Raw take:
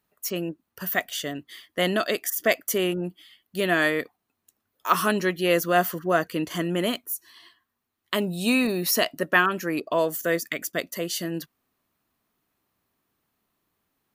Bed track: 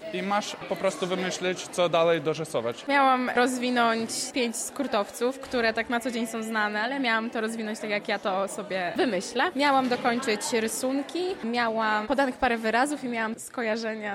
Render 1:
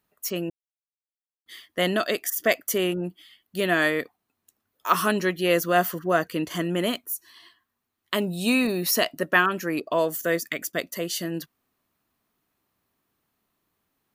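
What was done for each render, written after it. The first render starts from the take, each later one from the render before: 0.5–1.46 mute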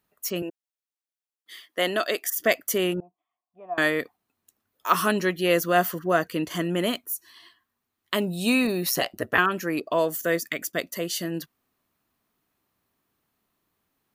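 0.42–2.29 HPF 310 Hz; 3–3.78 vocal tract filter a; 8.89–9.38 ring modulator 63 Hz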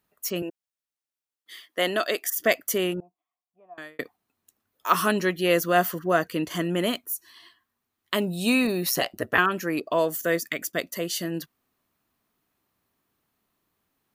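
2.67–3.99 fade out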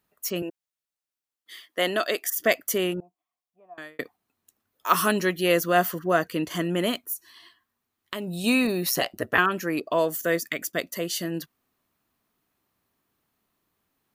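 4.9–5.52 high shelf 6300 Hz +5 dB; 7.13–8.44 compressor, threshold -28 dBFS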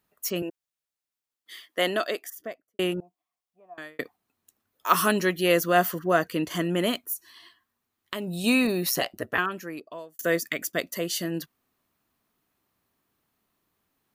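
1.8–2.79 studio fade out; 8.79–10.19 fade out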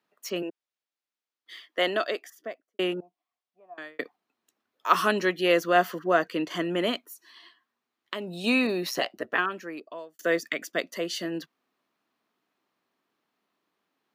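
HPF 110 Hz; three-band isolator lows -16 dB, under 200 Hz, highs -15 dB, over 5700 Hz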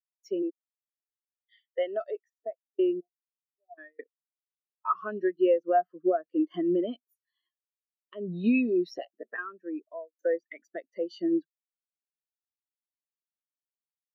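compressor 4:1, threshold -33 dBFS, peak gain reduction 15.5 dB; spectral expander 2.5:1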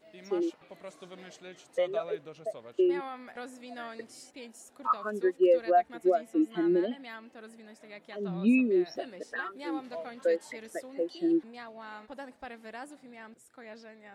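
add bed track -19.5 dB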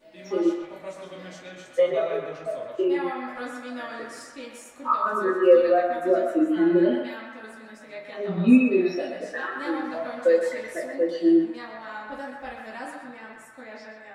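on a send: narrowing echo 0.125 s, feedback 68%, band-pass 1400 Hz, level -3 dB; on the sum: shoebox room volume 160 m³, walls furnished, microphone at 2.5 m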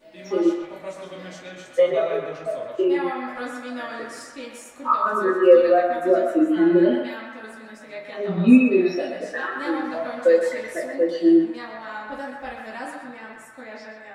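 gain +3 dB

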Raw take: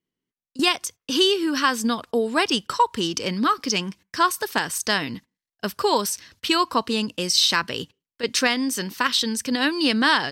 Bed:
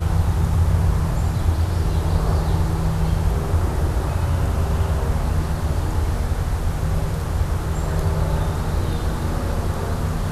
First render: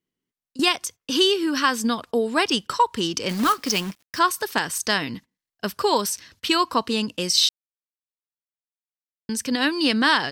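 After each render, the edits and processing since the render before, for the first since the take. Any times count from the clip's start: 3.29–4.19 companded quantiser 4-bit; 7.49–9.29 mute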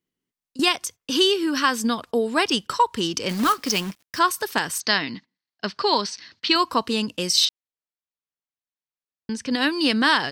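4.8–6.56 speaker cabinet 160–5400 Hz, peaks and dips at 490 Hz -5 dB, 2000 Hz +3 dB, 4400 Hz +7 dB; 7.45–9.51 air absorption 100 m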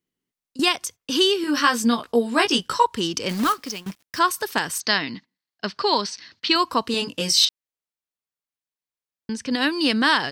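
1.42–2.86 doubler 17 ms -3 dB; 3.43–3.86 fade out, to -21 dB; 6.92–7.45 doubler 21 ms -3.5 dB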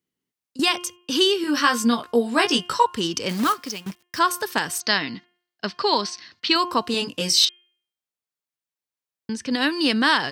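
HPF 58 Hz; de-hum 353.8 Hz, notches 9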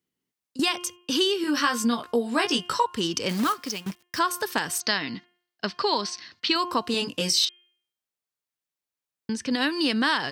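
compressor 2:1, threshold -23 dBFS, peak gain reduction 6.5 dB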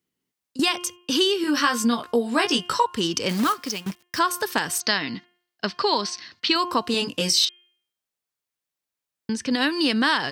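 gain +2.5 dB

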